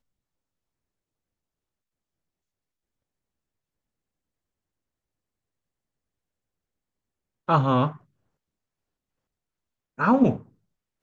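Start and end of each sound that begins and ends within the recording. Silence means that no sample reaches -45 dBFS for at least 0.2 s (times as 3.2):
7.48–7.97
9.98–10.43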